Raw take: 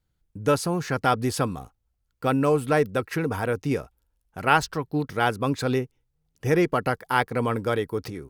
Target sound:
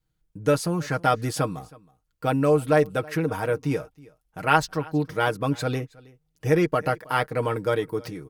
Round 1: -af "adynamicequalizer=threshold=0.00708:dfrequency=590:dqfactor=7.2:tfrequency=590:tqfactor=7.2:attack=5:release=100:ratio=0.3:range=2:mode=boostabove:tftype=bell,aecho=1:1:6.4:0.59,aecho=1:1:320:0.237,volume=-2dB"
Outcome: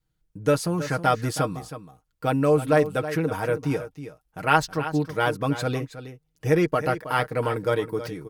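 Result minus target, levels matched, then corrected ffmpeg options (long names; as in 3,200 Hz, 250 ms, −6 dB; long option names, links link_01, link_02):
echo-to-direct +11 dB
-af "adynamicequalizer=threshold=0.00708:dfrequency=590:dqfactor=7.2:tfrequency=590:tqfactor=7.2:attack=5:release=100:ratio=0.3:range=2:mode=boostabove:tftype=bell,aecho=1:1:6.4:0.59,aecho=1:1:320:0.0668,volume=-2dB"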